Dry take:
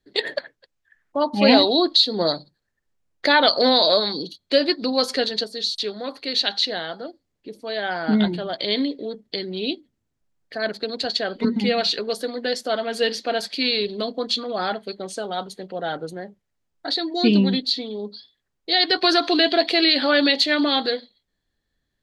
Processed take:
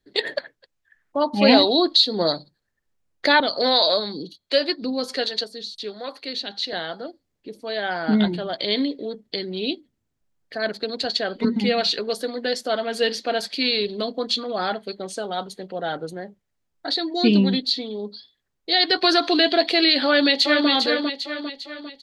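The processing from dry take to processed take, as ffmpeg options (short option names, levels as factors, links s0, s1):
-filter_complex "[0:a]asettb=1/sr,asplit=3[s0][s1][s2];[s0]atrim=end=3.404[s3];[s1]atrim=start=3.4:end=6.73,asetpts=PTS-STARTPTS,afade=t=in:d=0.004:c=qsin,afade=t=out:st=3.326:d=0.004:c=qsin,acrossover=split=430[s4][s5];[s4]aeval=exprs='val(0)*(1-0.7/2+0.7/2*cos(2*PI*1.3*n/s))':c=same[s6];[s5]aeval=exprs='val(0)*(1-0.7/2-0.7/2*cos(2*PI*1.3*n/s))':c=same[s7];[s6][s7]amix=inputs=2:normalize=0[s8];[s2]atrim=start=6.726[s9];[s3][s8]acrossfade=d=0.004:c1=hsin:c2=qsin[s10];[s10][s9]acrossfade=d=0.004:c1=qsin:c2=hsin,asplit=2[s11][s12];[s12]afade=t=in:st=20.05:d=0.01,afade=t=out:st=20.69:d=0.01,aecho=0:1:400|800|1200|1600|2000|2400:0.562341|0.281171|0.140585|0.0702927|0.0351463|0.0175732[s13];[s11][s13]amix=inputs=2:normalize=0"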